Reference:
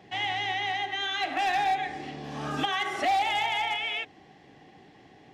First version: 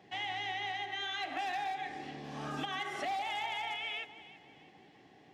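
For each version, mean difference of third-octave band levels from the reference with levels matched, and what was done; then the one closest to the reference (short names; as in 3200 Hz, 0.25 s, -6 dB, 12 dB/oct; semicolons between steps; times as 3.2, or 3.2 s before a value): 2.0 dB: compressor, threshold -28 dBFS, peak gain reduction 6 dB; low shelf 72 Hz -10.5 dB; on a send: echo with dull and thin repeats by turns 0.164 s, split 1600 Hz, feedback 62%, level -12 dB; on the sum: gain -6 dB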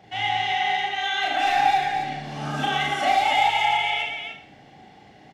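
3.5 dB: comb 1.4 ms, depth 35%; loudspeakers at several distances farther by 12 m -1 dB, 39 m -6 dB, 98 m -4 dB; Schroeder reverb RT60 0.51 s, combs from 28 ms, DRR 6 dB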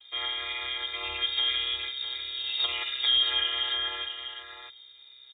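11.5 dB: chord vocoder major triad, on C4; echo 0.65 s -8.5 dB; inverted band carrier 4000 Hz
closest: first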